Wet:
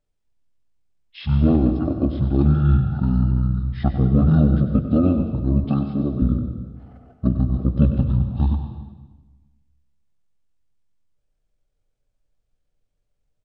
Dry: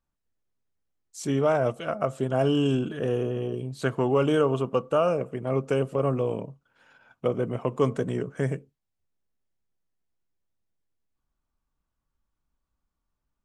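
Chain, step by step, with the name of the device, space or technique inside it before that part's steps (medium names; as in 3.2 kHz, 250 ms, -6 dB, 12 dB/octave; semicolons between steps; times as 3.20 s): monster voice (pitch shift -11.5 st; formant shift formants -2.5 st; bass shelf 220 Hz +7 dB; delay 97 ms -11.5 dB; reverberation RT60 1.2 s, pre-delay 118 ms, DRR 8.5 dB); 5.64–6.22 s: high-pass 150 Hz 12 dB/octave; trim +2.5 dB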